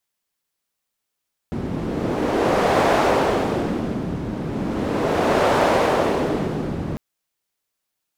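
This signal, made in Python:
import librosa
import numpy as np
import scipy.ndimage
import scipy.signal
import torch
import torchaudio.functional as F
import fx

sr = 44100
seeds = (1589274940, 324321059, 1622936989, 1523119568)

y = fx.wind(sr, seeds[0], length_s=5.45, low_hz=200.0, high_hz=650.0, q=1.1, gusts=2, swing_db=9)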